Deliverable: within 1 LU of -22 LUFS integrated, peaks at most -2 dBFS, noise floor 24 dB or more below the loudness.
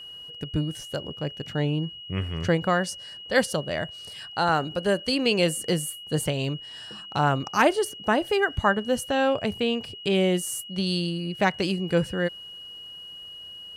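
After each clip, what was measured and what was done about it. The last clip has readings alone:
steady tone 2.9 kHz; tone level -39 dBFS; loudness -26.0 LUFS; peak level -6.5 dBFS; loudness target -22.0 LUFS
-> band-stop 2.9 kHz, Q 30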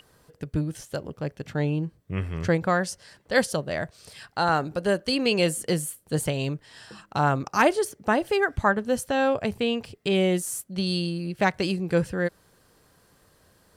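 steady tone not found; loudness -26.0 LUFS; peak level -6.5 dBFS; loudness target -22.0 LUFS
-> trim +4 dB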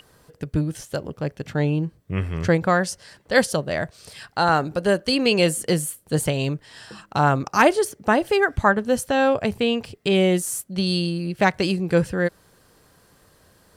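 loudness -22.0 LUFS; peak level -2.5 dBFS; noise floor -57 dBFS

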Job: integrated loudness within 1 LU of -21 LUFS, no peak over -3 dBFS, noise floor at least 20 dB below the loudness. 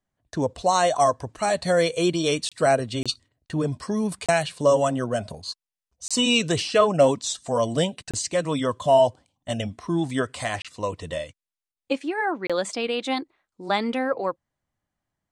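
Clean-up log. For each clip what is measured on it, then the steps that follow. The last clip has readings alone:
dropouts 7; longest dropout 26 ms; loudness -24.0 LUFS; peak level -7.0 dBFS; loudness target -21.0 LUFS
-> interpolate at 2.49/3.03/4.26/6.08/8.11/10.62/12.47 s, 26 ms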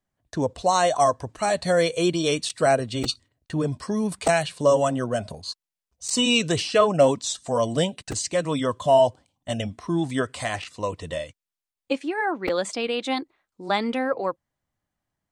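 dropouts 0; loudness -24.0 LUFS; peak level -7.0 dBFS; loudness target -21.0 LUFS
-> trim +3 dB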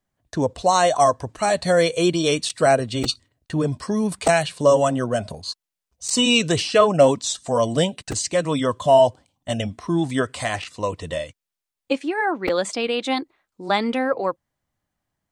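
loudness -21.0 LUFS; peak level -4.0 dBFS; noise floor -86 dBFS

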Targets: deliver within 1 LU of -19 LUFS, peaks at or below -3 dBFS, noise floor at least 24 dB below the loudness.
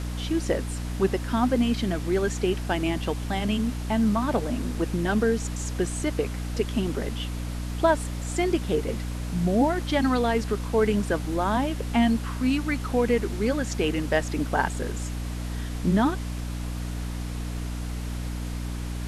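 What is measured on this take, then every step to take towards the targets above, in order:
hum 60 Hz; highest harmonic 300 Hz; hum level -29 dBFS; noise floor -32 dBFS; noise floor target -51 dBFS; loudness -26.5 LUFS; peak level -8.5 dBFS; loudness target -19.0 LUFS
-> de-hum 60 Hz, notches 5; noise print and reduce 19 dB; trim +7.5 dB; peak limiter -3 dBFS

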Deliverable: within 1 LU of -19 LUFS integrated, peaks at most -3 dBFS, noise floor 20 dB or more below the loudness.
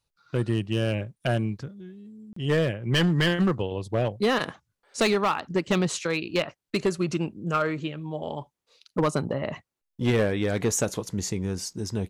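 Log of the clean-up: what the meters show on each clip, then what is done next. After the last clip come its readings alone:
clipped samples 1.1%; clipping level -17.0 dBFS; dropouts 1; longest dropout 34 ms; loudness -27.0 LUFS; peak level -17.0 dBFS; loudness target -19.0 LUFS
-> clip repair -17 dBFS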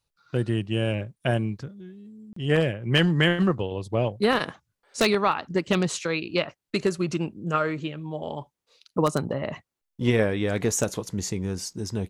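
clipped samples 0.0%; dropouts 1; longest dropout 34 ms
-> interpolate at 2.33 s, 34 ms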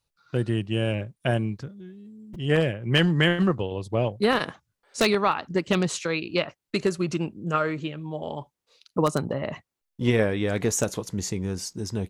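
dropouts 0; loudness -26.0 LUFS; peak level -8.0 dBFS; loudness target -19.0 LUFS
-> trim +7 dB; peak limiter -3 dBFS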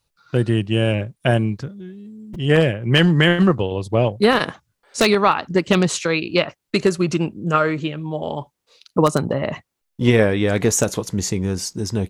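loudness -19.5 LUFS; peak level -3.0 dBFS; noise floor -76 dBFS

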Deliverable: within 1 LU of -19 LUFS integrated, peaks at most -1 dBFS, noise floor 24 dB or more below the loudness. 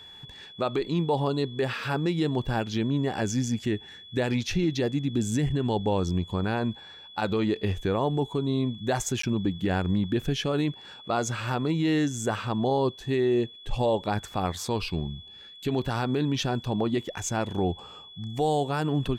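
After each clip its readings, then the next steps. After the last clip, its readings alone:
dropouts 1; longest dropout 14 ms; steady tone 3.4 kHz; tone level -45 dBFS; loudness -28.0 LUFS; peak level -15.5 dBFS; loudness target -19.0 LUFS
-> interpolate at 9.22 s, 14 ms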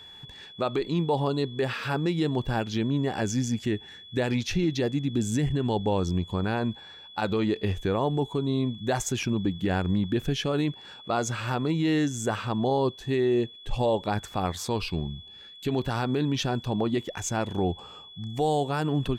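dropouts 0; steady tone 3.4 kHz; tone level -45 dBFS
-> band-stop 3.4 kHz, Q 30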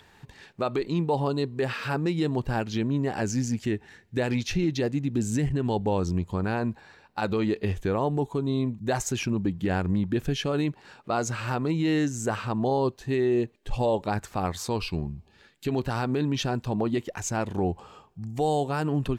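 steady tone not found; loudness -28.0 LUFS; peak level -15.5 dBFS; loudness target -19.0 LUFS
-> trim +9 dB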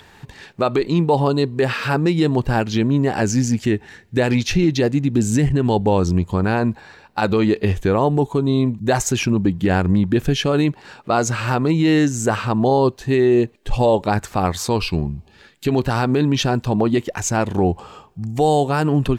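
loudness -19.0 LUFS; peak level -6.5 dBFS; noise floor -50 dBFS

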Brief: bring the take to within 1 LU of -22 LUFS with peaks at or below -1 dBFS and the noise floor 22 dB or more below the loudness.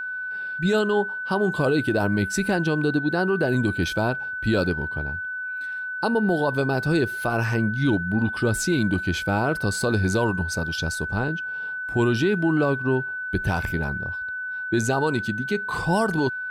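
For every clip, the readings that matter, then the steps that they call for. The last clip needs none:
steady tone 1.5 kHz; tone level -28 dBFS; loudness -24.0 LUFS; peak level -11.5 dBFS; loudness target -22.0 LUFS
-> band-stop 1.5 kHz, Q 30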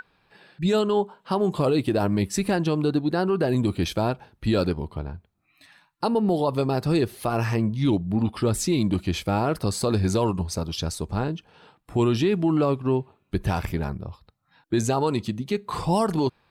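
steady tone not found; loudness -24.5 LUFS; peak level -13.0 dBFS; loudness target -22.0 LUFS
-> trim +2.5 dB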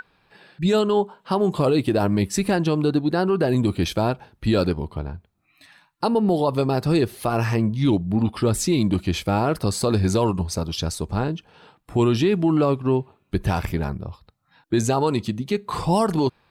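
loudness -22.5 LUFS; peak level -10.5 dBFS; noise floor -65 dBFS

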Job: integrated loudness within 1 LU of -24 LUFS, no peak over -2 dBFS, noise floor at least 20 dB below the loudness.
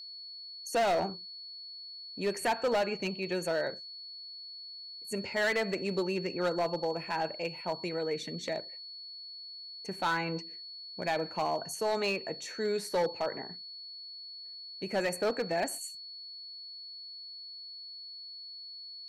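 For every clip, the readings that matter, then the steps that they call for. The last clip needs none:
clipped samples 1.0%; clipping level -24.0 dBFS; steady tone 4.4 kHz; tone level -43 dBFS; loudness -34.5 LUFS; peak level -24.0 dBFS; loudness target -24.0 LUFS
-> clip repair -24 dBFS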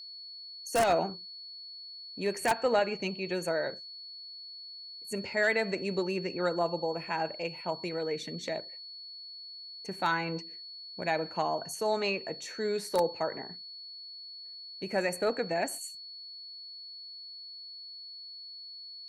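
clipped samples 0.0%; steady tone 4.4 kHz; tone level -43 dBFS
-> band-stop 4.4 kHz, Q 30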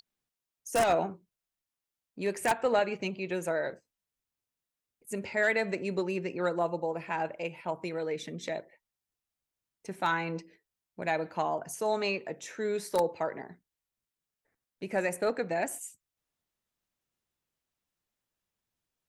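steady tone not found; loudness -32.0 LUFS; peak level -14.5 dBFS; loudness target -24.0 LUFS
-> trim +8 dB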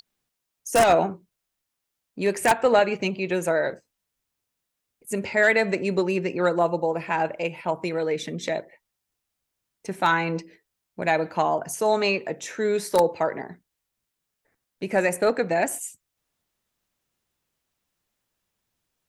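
loudness -24.0 LUFS; peak level -6.5 dBFS; noise floor -82 dBFS

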